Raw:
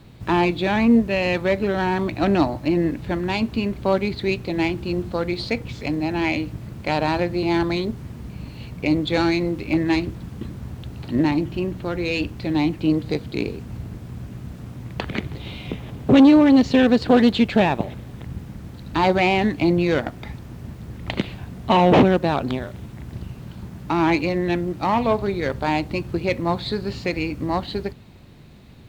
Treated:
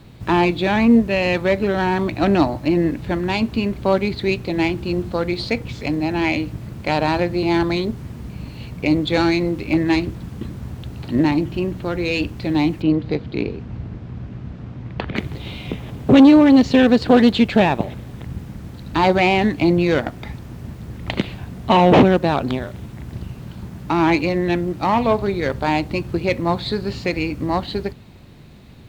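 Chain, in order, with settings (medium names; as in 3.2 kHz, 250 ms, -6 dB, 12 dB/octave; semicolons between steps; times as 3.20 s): 12.82–15.16 s: distance through air 180 m; trim +2.5 dB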